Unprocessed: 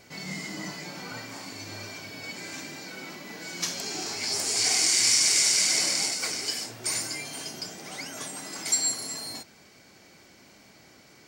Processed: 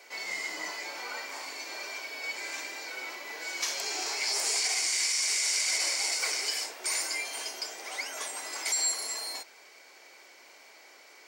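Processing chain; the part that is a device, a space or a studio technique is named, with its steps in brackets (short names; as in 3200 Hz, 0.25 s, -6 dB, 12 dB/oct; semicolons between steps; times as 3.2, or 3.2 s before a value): laptop speaker (HPF 410 Hz 24 dB/oct; bell 970 Hz +4 dB 0.36 oct; bell 2200 Hz +4.5 dB 0.52 oct; limiter -19 dBFS, peak gain reduction 10 dB)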